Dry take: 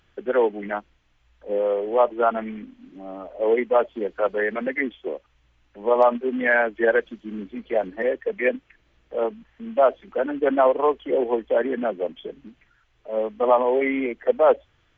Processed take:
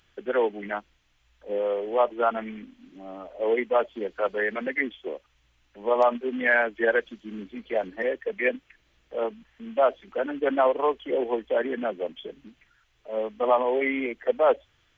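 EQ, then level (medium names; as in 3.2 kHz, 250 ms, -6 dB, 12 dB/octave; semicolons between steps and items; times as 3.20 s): treble shelf 2.2 kHz +9 dB; -4.5 dB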